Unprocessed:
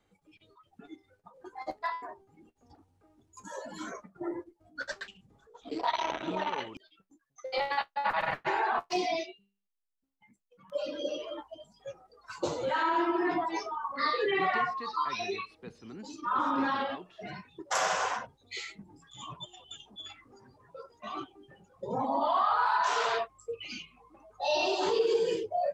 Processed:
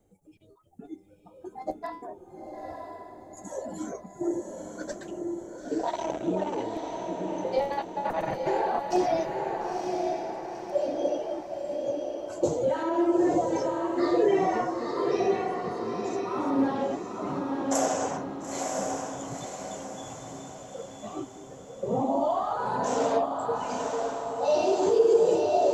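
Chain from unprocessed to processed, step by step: high-order bell 2.2 kHz -15.5 dB 2.7 oct; on a send: echo that smears into a reverb 939 ms, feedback 49%, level -3 dB; on the sum: trim +7 dB

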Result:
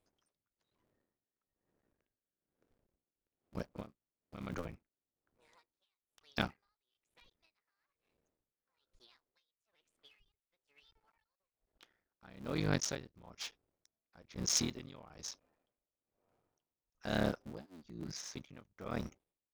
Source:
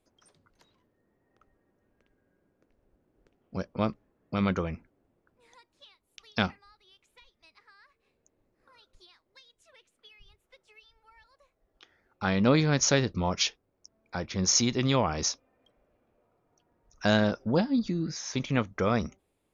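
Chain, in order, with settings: cycle switcher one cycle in 3, muted; 3.81–4.53 s: compression 6:1, threshold -32 dBFS, peak gain reduction 9 dB; logarithmic tremolo 1.1 Hz, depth 23 dB; trim -5.5 dB

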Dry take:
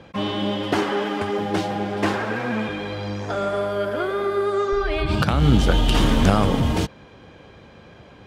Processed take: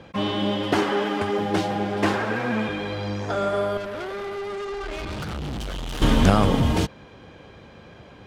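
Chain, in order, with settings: 3.77–6.02 s: valve stage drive 29 dB, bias 0.6

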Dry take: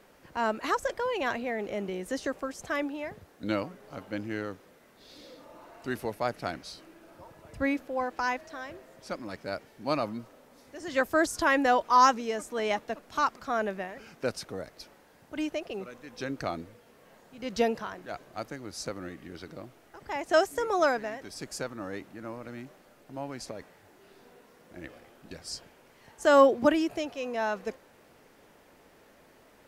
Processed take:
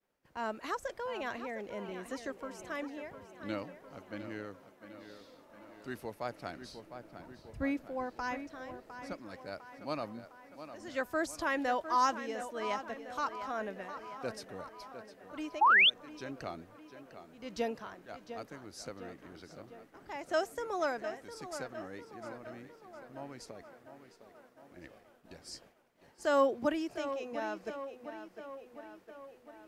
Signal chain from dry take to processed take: tape echo 705 ms, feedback 64%, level -10 dB, low-pass 4.3 kHz; expander -48 dBFS; 6.61–9.13 s: bass shelf 280 Hz +8 dB; 15.61–15.90 s: painted sound rise 780–3700 Hz -14 dBFS; trim -8.5 dB

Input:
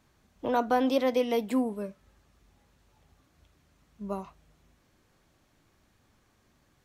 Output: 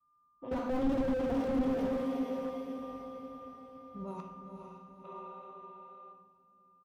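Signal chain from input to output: Doppler pass-by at 3.06 s, 9 m/s, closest 8.3 m; level-controlled noise filter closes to 1.2 kHz, open at -30 dBFS; whistle 1.2 kHz -61 dBFS; expander -55 dBFS; comb 7.4 ms, depth 48%; level held to a coarse grid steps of 17 dB; echo that smears into a reverb 491 ms, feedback 47%, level -6 dB; time-frequency box 5.04–6.13 s, 340–4000 Hz +12 dB; on a send at -2.5 dB: reverberation RT60 1.1 s, pre-delay 3 ms; on the sum: slew-rate limiter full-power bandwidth 6.4 Hz; trim +6.5 dB

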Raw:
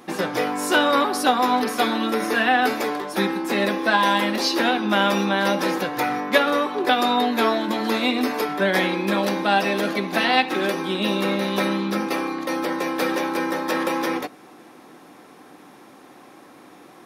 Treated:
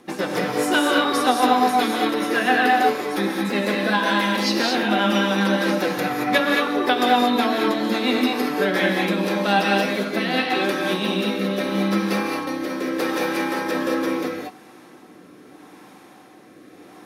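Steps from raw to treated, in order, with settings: rotary cabinet horn 7.5 Hz, later 0.8 Hz, at 8.47 s; gated-style reverb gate 250 ms rising, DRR 0 dB

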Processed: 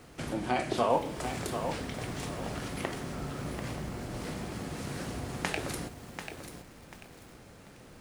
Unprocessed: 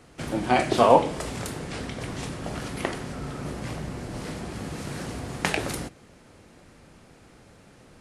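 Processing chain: compression 1.5:1, threshold -41 dBFS, peak gain reduction 11 dB; bit crusher 11-bit; bit-crushed delay 740 ms, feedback 35%, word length 8-bit, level -8 dB

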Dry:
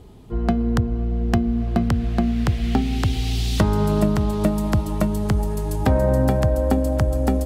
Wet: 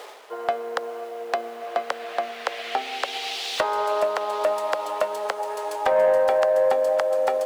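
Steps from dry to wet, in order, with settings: median filter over 3 samples; in parallel at 0 dB: peak limiter -18.5 dBFS, peak gain reduction 10 dB; on the sum: bit crusher 8-bit; Chebyshev high-pass 510 Hz, order 4; treble shelf 4.7 kHz -11 dB; reverse; upward compressor, threshold -33 dBFS; reverse; saturation -14.5 dBFS, distortion -18 dB; trim +3.5 dB

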